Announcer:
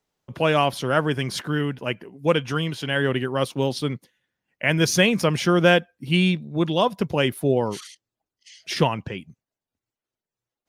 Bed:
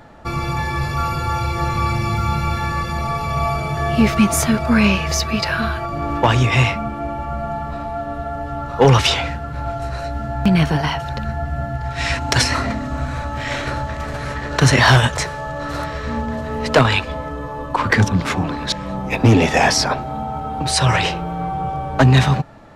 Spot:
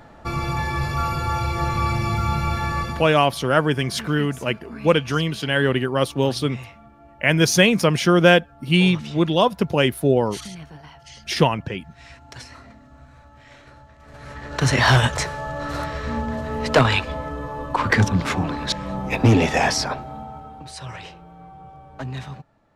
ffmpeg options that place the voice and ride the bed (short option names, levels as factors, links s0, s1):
-filter_complex "[0:a]adelay=2600,volume=1.41[s0];[1:a]volume=8.41,afade=t=out:st=2.82:d=0.3:silence=0.0891251,afade=t=in:st=14.01:d=1.05:silence=0.0891251,afade=t=out:st=19.25:d=1.47:silence=0.141254[s1];[s0][s1]amix=inputs=2:normalize=0"